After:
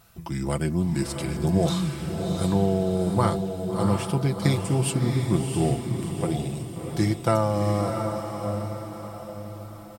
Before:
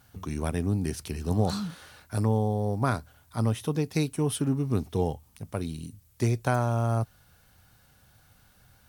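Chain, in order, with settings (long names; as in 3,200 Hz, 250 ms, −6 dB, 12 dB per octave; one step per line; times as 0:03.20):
comb filter 5.3 ms, depth 62%
feedback delay with all-pass diffusion 609 ms, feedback 48%, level −5 dB
speed change −11%
level +2.5 dB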